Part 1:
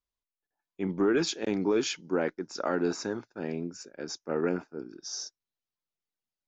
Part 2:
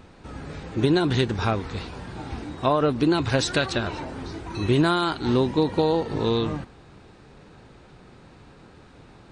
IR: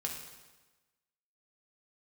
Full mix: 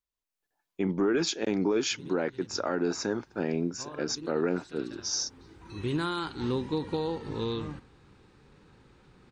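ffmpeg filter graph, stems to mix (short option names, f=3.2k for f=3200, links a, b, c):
-filter_complex "[0:a]dynaudnorm=f=120:g=5:m=9dB,volume=-2.5dB,asplit=2[a][b];[1:a]equalizer=f=660:t=o:w=0.26:g=-12.5,adelay=1150,volume=-8.5dB,asplit=2[c][d];[d]volume=-18.5dB[e];[b]apad=whole_len=461560[f];[c][f]sidechaincompress=threshold=-40dB:ratio=5:attack=8.1:release=802[g];[e]aecho=0:1:72:1[h];[a][g][h]amix=inputs=3:normalize=0,alimiter=limit=-18dB:level=0:latency=1:release=275"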